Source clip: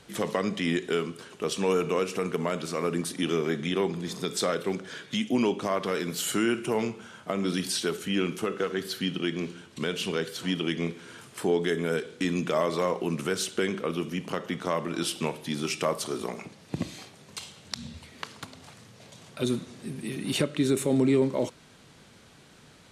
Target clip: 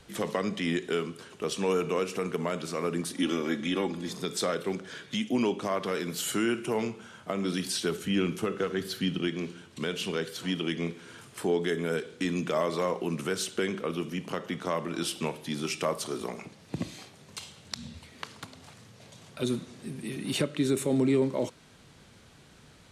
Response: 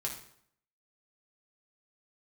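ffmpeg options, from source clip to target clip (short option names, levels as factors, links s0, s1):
-filter_complex "[0:a]asettb=1/sr,asplit=3[s0][s1][s2];[s0]atrim=end=3.154[s3];[s1]atrim=start=3.15:end=4.09,asetpts=PTS-STARTPTS,afade=t=in:d=0.004:c=qsin,afade=t=out:st=0.936:d=0.004:c=qsin,aecho=1:1:3.6:0.65,atrim=end_sample=41454[s4];[s2]atrim=start=4.086[s5];[s3][s4]acrossfade=d=0.004:c1=hsin:c2=qsin[s6];[s6][s5]acrossfade=d=0.004:c1=qsin:c2=hsin,asettb=1/sr,asplit=3[s7][s8][s9];[s7]atrim=end=7.844[s10];[s8]atrim=start=7.84:end=9.28,asetpts=PTS-STARTPTS,afade=t=in:d=0.004:c=qsin,afade=t=out:st=1.436:d=0.004:c=qsin,lowshelf=f=140:g=10[s11];[s9]atrim=start=9.276[s12];[s10][s11]acrossfade=d=0.004:c1=hsin:c2=qsin[s13];[s13][s12]acrossfade=d=0.004:c1=qsin:c2=hsin,acrossover=split=110|5400[s14][s15][s16];[s14]acompressor=mode=upward:threshold=0.00224:ratio=2.5[s17];[s17][s15][s16]amix=inputs=3:normalize=0,volume=0.794"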